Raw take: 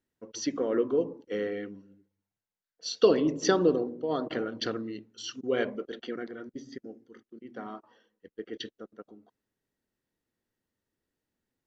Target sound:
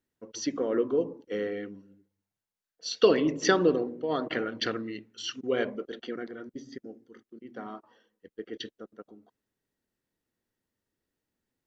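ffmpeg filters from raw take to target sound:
-filter_complex "[0:a]asettb=1/sr,asplit=3[s0][s1][s2];[s0]atrim=end=2.914[s3];[s1]atrim=start=2.91:end=5.53,asetpts=PTS-STARTPTS,afade=t=in:d=0.004:c=qsin,afade=t=out:st=2.616:d=0.004:c=qsin,equalizer=f=2100:t=o:w=1.1:g=8.5[s4];[s2]atrim=start=5.526[s5];[s3][s4]acrossfade=d=0.004:c1=hsin:c2=qsin[s6];[s6][s5]acrossfade=d=0.004:c1=qsin:c2=hsin"

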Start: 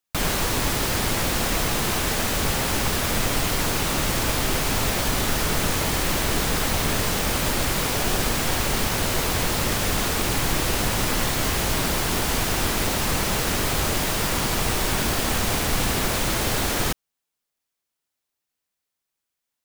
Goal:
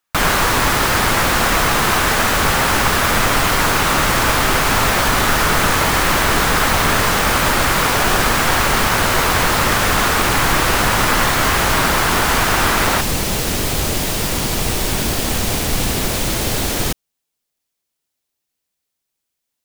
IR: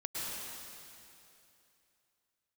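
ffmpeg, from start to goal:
-af "asetnsamples=n=441:p=0,asendcmd='13.01 equalizer g -4.5',equalizer=f=1300:t=o:w=1.7:g=9,volume=1.78"

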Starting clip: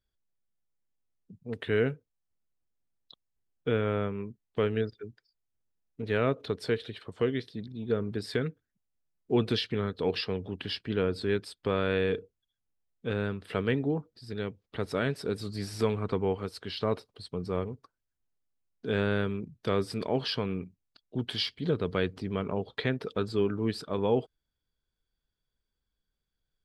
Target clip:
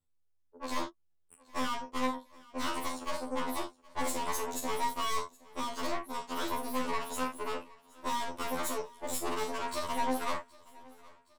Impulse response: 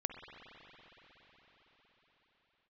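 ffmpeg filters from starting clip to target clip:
-filter_complex "[0:a]asetrate=103194,aresample=44100,asplit=2[s0][s1];[s1]aecho=0:1:39|71:0.376|0.168[s2];[s0][s2]amix=inputs=2:normalize=0,aeval=exprs='(tanh(44.7*val(0)+0.8)-tanh(0.8))/44.7':c=same,asplit=2[s3][s4];[s4]aecho=0:1:769|1538|2307:0.0708|0.0333|0.0156[s5];[s3][s5]amix=inputs=2:normalize=0,afftfilt=real='re*2*eq(mod(b,4),0)':imag='im*2*eq(mod(b,4),0)':win_size=2048:overlap=0.75,volume=1.78"

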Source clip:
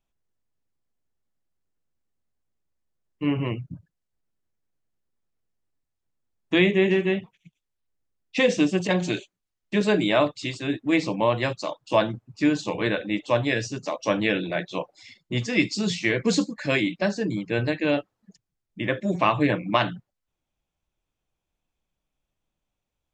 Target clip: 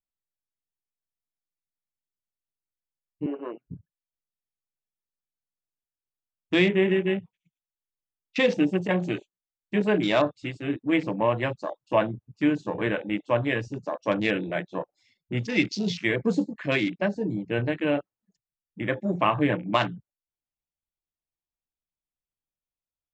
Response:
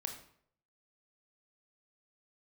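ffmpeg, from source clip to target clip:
-filter_complex "[0:a]asettb=1/sr,asplit=3[s0][s1][s2];[s0]atrim=end=3.264[s3];[s1]atrim=start=3.26:end=3.67,asetpts=PTS-STARTPTS,afade=t=in:d=0.004:c=qsin,afade=t=out:st=0.406:d=0.004:c=qsin,highpass=f=340:w=0.5412,highpass=f=340:w=1.3066,equalizer=f=870:t=q:w=4:g=-4,equalizer=f=1500:t=q:w=4:g=9,equalizer=f=2200:t=q:w=4:g=-5,lowpass=f=3400:w=0.5412,lowpass=f=3400:w=1.3066[s4];[s2]atrim=start=3.666[s5];[s3][s4]acrossfade=d=0.004:c1=hsin:c2=qsin[s6];[s6][s5]acrossfade=d=0.004:c1=qsin:c2=hsin,afwtdn=0.0224,volume=0.841"

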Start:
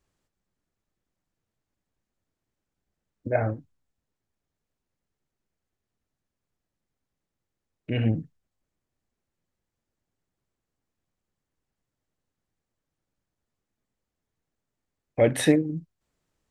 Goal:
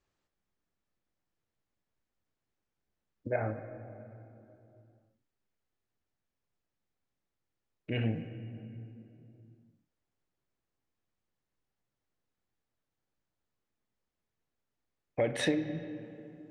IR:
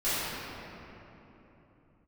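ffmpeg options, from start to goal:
-filter_complex "[0:a]lowpass=6100,lowshelf=f=350:g=-5,acompressor=threshold=0.0708:ratio=6,asplit=2[s0][s1];[1:a]atrim=start_sample=2205,asetrate=52920,aresample=44100,lowpass=4000[s2];[s1][s2]afir=irnorm=-1:irlink=0,volume=0.106[s3];[s0][s3]amix=inputs=2:normalize=0,volume=0.708"

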